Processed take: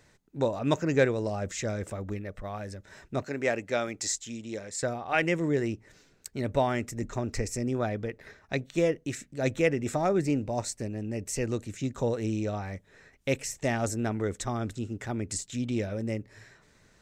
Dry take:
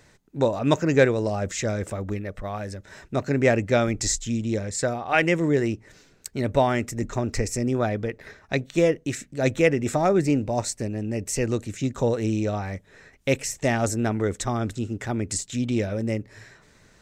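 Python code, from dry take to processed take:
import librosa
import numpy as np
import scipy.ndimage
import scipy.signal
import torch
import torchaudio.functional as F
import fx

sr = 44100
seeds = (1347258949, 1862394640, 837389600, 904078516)

y = fx.highpass(x, sr, hz=460.0, slope=6, at=(3.24, 4.83))
y = F.gain(torch.from_numpy(y), -5.5).numpy()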